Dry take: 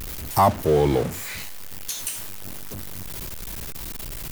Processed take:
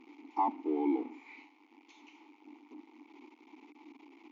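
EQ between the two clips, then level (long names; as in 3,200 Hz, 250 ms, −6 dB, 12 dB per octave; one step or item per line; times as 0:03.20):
formant filter u
linear-phase brick-wall band-pass 230–7,200 Hz
high-shelf EQ 3,800 Hz −11.5 dB
0.0 dB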